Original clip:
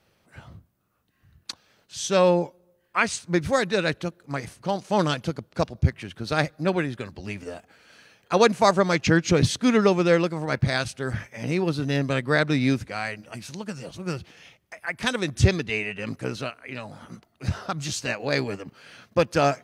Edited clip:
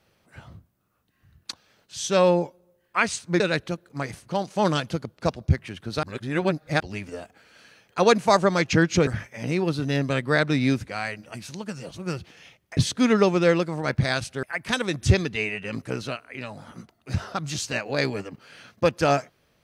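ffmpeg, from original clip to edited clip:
-filter_complex "[0:a]asplit=7[s0][s1][s2][s3][s4][s5][s6];[s0]atrim=end=3.402[s7];[s1]atrim=start=3.738:end=6.372[s8];[s2]atrim=start=6.368:end=7.142,asetpts=PTS-STARTPTS,areverse[s9];[s3]atrim=start=7.138:end=9.412[s10];[s4]atrim=start=11.068:end=14.772[s11];[s5]atrim=start=9.408:end=11.072[s12];[s6]atrim=start=14.768[s13];[s7][s8]acrossfade=d=0.004:c1=hsin:c2=hsin[s14];[s14][s9]acrossfade=d=0.004:c1=hsin:c2=hsin[s15];[s15][s10]acrossfade=d=0.004:c1=hsin:c2=hsin[s16];[s16][s11]acrossfade=d=0.004:c1=hsin:c2=hsin[s17];[s17][s12]acrossfade=d=0.004:c1=hsin:c2=hsin[s18];[s18][s13]acrossfade=d=0.004:c1=hsin:c2=hsin"

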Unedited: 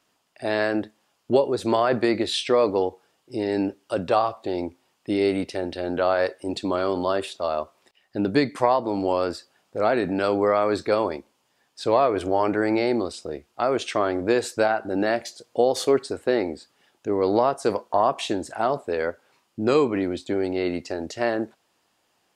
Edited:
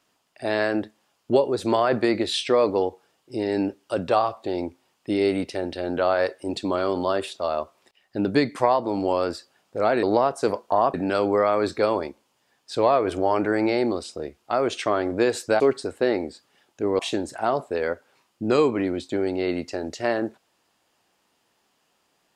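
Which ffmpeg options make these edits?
-filter_complex "[0:a]asplit=5[s0][s1][s2][s3][s4];[s0]atrim=end=10.032[s5];[s1]atrim=start=17.248:end=18.162[s6];[s2]atrim=start=10.028:end=14.692[s7];[s3]atrim=start=15.858:end=17.252[s8];[s4]atrim=start=18.158[s9];[s5][s6]acrossfade=d=0.004:c1=hsin:c2=hsin[s10];[s10][s7]acrossfade=d=0.004:c1=hsin:c2=hsin[s11];[s11][s8]acrossfade=d=0.004:c1=hsin:c2=hsin[s12];[s12][s9]acrossfade=d=0.004:c1=hsin:c2=hsin"

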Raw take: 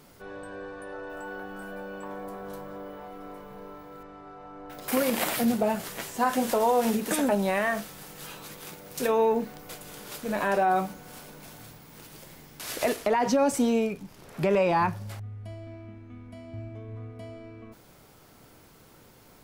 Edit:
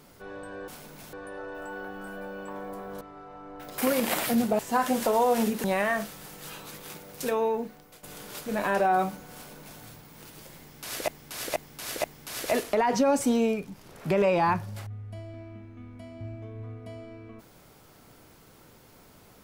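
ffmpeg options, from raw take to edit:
-filter_complex "[0:a]asplit=10[s0][s1][s2][s3][s4][s5][s6][s7][s8][s9];[s0]atrim=end=0.682[s10];[s1]atrim=start=11.118:end=11.572[s11];[s2]atrim=start=0.678:end=2.562[s12];[s3]atrim=start=4.108:end=5.692[s13];[s4]atrim=start=6.058:end=7.112[s14];[s5]atrim=start=7.408:end=9.8,asetpts=PTS-STARTPTS,afade=t=out:st=1.362:d=1.03:silence=0.223872[s15];[s6]atrim=start=9.8:end=12.852,asetpts=PTS-STARTPTS,afade=t=in:d=0.004:c=hsin:silence=0.223872[s16];[s7]atrim=start=12.368:end=12.852[s17];[s8]atrim=start=12.368:end=12.852[s18];[s9]atrim=start=12.368[s19];[s10][s11]acrossfade=d=0.004:c1=hsin:c2=hsin[s20];[s20][s12]acrossfade=d=0.004:c1=hsin:c2=hsin[s21];[s21][s13]acrossfade=d=0.004:c1=hsin:c2=hsin[s22];[s22][s14]acrossfade=d=0.004:c1=hsin:c2=hsin[s23];[s15][s16]concat=n=2:v=0:a=1[s24];[s23][s24]acrossfade=d=0.004:c1=hsin:c2=hsin[s25];[s25][s17]acrossfade=d=0.004:c1=hsin:c2=hsin[s26];[s26][s18]acrossfade=d=0.004:c1=hsin:c2=hsin[s27];[s27][s19]acrossfade=d=0.004:c1=hsin:c2=hsin"

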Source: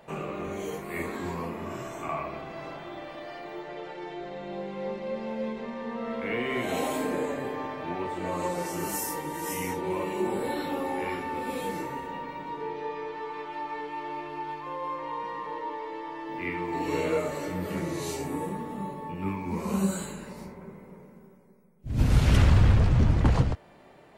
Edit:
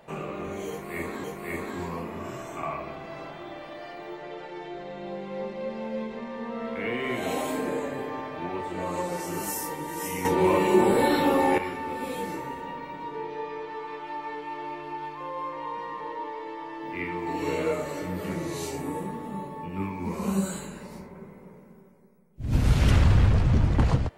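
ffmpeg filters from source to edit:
-filter_complex "[0:a]asplit=4[s0][s1][s2][s3];[s0]atrim=end=1.242[s4];[s1]atrim=start=0.698:end=9.712[s5];[s2]atrim=start=9.708:end=11.042,asetpts=PTS-STARTPTS,volume=2.82[s6];[s3]atrim=start=11.038[s7];[s4][s5]acrossfade=d=0.004:c1=hsin:c2=hsin[s8];[s8][s6]acrossfade=d=0.004:c1=hsin:c2=hsin[s9];[s9][s7]acrossfade=d=0.004:c1=hsin:c2=hsin"

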